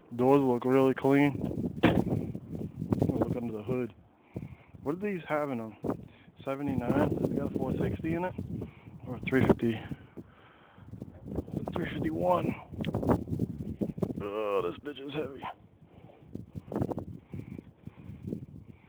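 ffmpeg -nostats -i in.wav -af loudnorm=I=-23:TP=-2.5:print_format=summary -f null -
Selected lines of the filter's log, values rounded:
Input Integrated:    -31.6 LUFS
Input True Peak:     -10.6 dBTP
Input LRA:            11.3 LU
Input Threshold:     -43.0 LUFS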